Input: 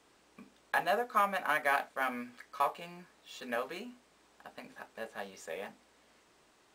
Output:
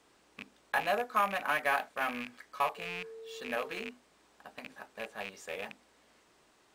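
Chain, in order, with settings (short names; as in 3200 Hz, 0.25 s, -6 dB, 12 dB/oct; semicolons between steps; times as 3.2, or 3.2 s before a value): rattling part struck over -52 dBFS, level -28 dBFS; 2.76–3.89 whine 450 Hz -44 dBFS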